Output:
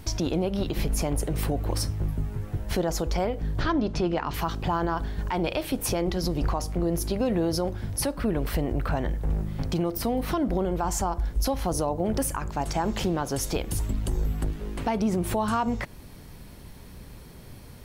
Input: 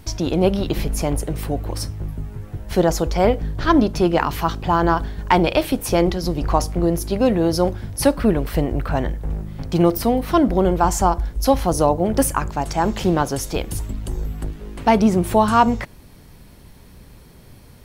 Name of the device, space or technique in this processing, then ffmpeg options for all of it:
stacked limiters: -filter_complex "[0:a]asettb=1/sr,asplit=3[s0][s1][s2];[s0]atrim=end=3.624[s3];[s1]atrim=start=3.62:end=4.34,asetpts=PTS-STARTPTS,afade=t=in:d=0.004:c=qsin,afade=t=out:st=0.716:d=0.004:c=qsin,lowpass=5900[s4];[s2]atrim=start=4.336[s5];[s3][s4]acrossfade=d=0.004:c1=hsin:c2=qsin[s6];[s6][s5]acrossfade=d=0.004:c1=qsin:c2=hsin,alimiter=limit=0.447:level=0:latency=1:release=408,alimiter=limit=0.224:level=0:latency=1:release=318,alimiter=limit=0.141:level=0:latency=1:release=82"

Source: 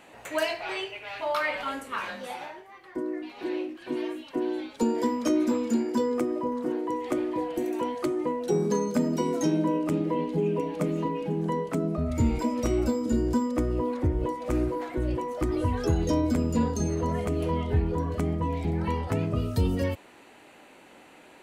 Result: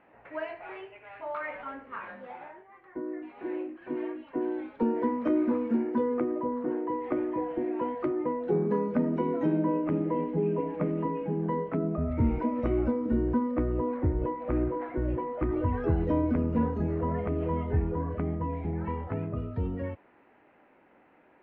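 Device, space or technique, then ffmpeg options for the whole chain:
action camera in a waterproof case: -af "lowpass=f=2100:w=0.5412,lowpass=f=2100:w=1.3066,dynaudnorm=f=200:g=31:m=2,volume=0.422" -ar 22050 -c:a aac -b:a 48k

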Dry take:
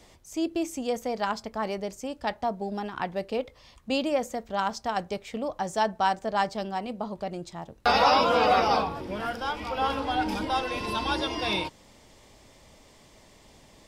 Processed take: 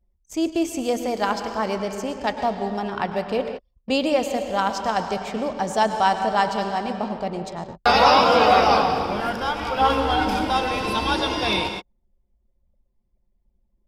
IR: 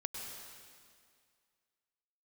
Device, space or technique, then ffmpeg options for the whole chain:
keyed gated reverb: -filter_complex "[0:a]asplit=3[s0][s1][s2];[1:a]atrim=start_sample=2205[s3];[s1][s3]afir=irnorm=-1:irlink=0[s4];[s2]apad=whole_len=611900[s5];[s4][s5]sidechaingate=range=0.0355:threshold=0.00501:ratio=16:detection=peak,volume=1.41[s6];[s0][s6]amix=inputs=2:normalize=0,asettb=1/sr,asplit=3[s7][s8][s9];[s7]atrim=end=9.774[s10];[s8]atrim=start=9.77:end=10.3,asetpts=PTS-STARTPTS,afade=t=in:d=0.004:c=qsin,afade=t=out:st=0.526:d=0.004:c=qsin,asplit=2[s11][s12];[s12]adelay=15,volume=0.631[s13];[s11][s13]amix=inputs=2:normalize=0,atrim=end_sample=23373[s14];[s9]atrim=start=10.296[s15];[s10][s14]acrossfade=d=0.004:c1=hsin:c2=qsin[s16];[s16][s15]acrossfade=d=0.004:c1=qsin:c2=hsin,anlmdn=0.398,volume=0.891"

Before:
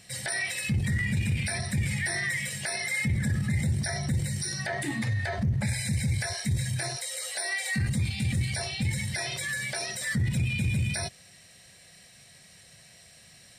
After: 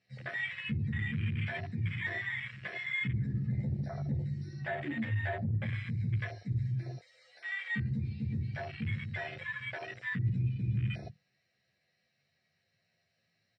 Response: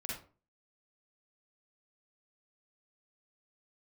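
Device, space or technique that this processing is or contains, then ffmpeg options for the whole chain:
barber-pole flanger into a guitar amplifier: -filter_complex "[0:a]lowshelf=f=91:g=-5,bandreject=f=50:t=h:w=6,bandreject=f=100:t=h:w=6,bandreject=f=150:t=h:w=6,bandreject=f=200:t=h:w=6,bandreject=f=250:t=h:w=6,bandreject=f=300:t=h:w=6,asplit=2[s0][s1];[s1]adelay=11.7,afreqshift=0.26[s2];[s0][s2]amix=inputs=2:normalize=1,asoftclip=type=tanh:threshold=0.0596,lowpass=11000,highpass=88,equalizer=f=110:t=q:w=4:g=6,equalizer=f=1000:t=q:w=4:g=-6,equalizer=f=3300:t=q:w=4:g=-9,lowpass=f=4400:w=0.5412,lowpass=f=4400:w=1.3066,afwtdn=0.0112"

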